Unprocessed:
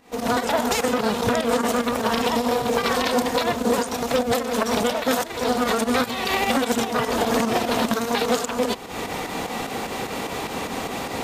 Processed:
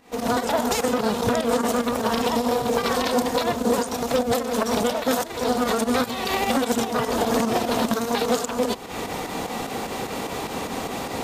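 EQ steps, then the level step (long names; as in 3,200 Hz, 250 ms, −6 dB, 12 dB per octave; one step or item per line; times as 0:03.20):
dynamic equaliser 2,200 Hz, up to −4 dB, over −35 dBFS, Q 0.89
0.0 dB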